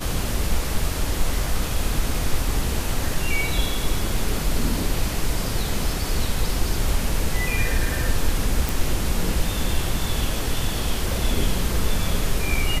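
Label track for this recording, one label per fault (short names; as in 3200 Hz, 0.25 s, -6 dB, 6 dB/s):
8.690000	8.690000	pop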